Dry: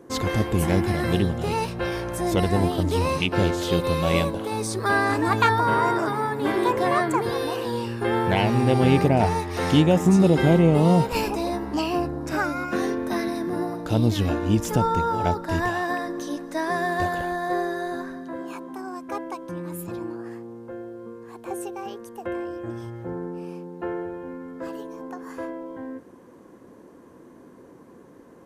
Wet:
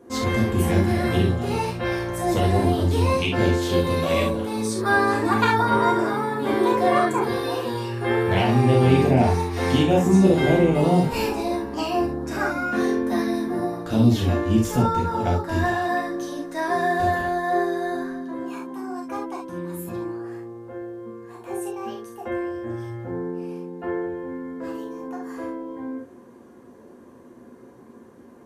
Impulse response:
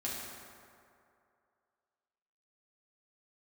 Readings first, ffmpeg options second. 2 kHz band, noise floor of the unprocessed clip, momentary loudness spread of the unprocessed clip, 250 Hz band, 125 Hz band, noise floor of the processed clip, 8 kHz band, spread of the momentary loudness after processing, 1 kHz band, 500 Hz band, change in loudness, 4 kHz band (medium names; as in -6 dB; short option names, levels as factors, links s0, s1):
+1.5 dB, -49 dBFS, 17 LU, +1.5 dB, +1.0 dB, -47 dBFS, 0.0 dB, 15 LU, +1.0 dB, +2.0 dB, +1.0 dB, 0.0 dB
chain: -filter_complex "[1:a]atrim=start_sample=2205,atrim=end_sample=3528[s0];[0:a][s0]afir=irnorm=-1:irlink=0"